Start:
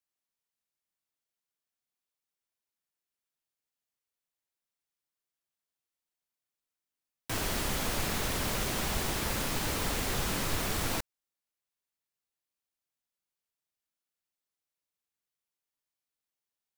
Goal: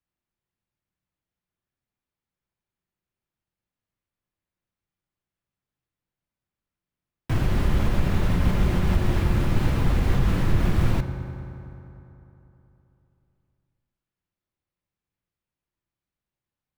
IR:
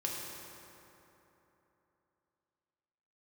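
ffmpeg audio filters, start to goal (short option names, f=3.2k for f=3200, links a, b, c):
-filter_complex "[0:a]alimiter=limit=-22.5dB:level=0:latency=1:release=149,bass=f=250:g=14,treble=f=4k:g=-11,asplit=2[a][b];[1:a]atrim=start_sample=2205,highshelf=f=4.9k:g=-12[c];[b][c]afir=irnorm=-1:irlink=0,volume=-3dB[d];[a][d]amix=inputs=2:normalize=0,volume=-1dB"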